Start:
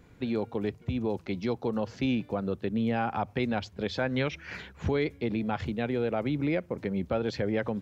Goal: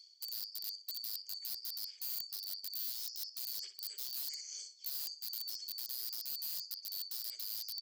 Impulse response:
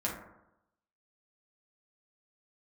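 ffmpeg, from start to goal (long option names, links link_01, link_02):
-filter_complex "[0:a]afftfilt=real='real(if(lt(b,736),b+184*(1-2*mod(floor(b/184),2)),b),0)':imag='imag(if(lt(b,736),b+184*(1-2*mod(floor(b/184),2)),b),0)':win_size=2048:overlap=0.75,acrossover=split=230[link_01][link_02];[link_01]acompressor=threshold=-42dB:ratio=8[link_03];[link_03][link_02]amix=inputs=2:normalize=0,afreqshift=370,asplit=3[link_04][link_05][link_06];[link_04]bandpass=frequency=270:width_type=q:width=8,volume=0dB[link_07];[link_05]bandpass=frequency=2290:width_type=q:width=8,volume=-6dB[link_08];[link_06]bandpass=frequency=3010:width_type=q:width=8,volume=-9dB[link_09];[link_07][link_08][link_09]amix=inputs=3:normalize=0,highshelf=frequency=3700:gain=6.5,aecho=1:1:61|122|183|244:0.355|0.138|0.054|0.021,aeval=exprs='(mod(100*val(0)+1,2)-1)/100':channel_layout=same,areverse,acompressor=threshold=-59dB:ratio=10,areverse,aexciter=amount=3.5:drive=4.1:freq=3300,volume=7.5dB"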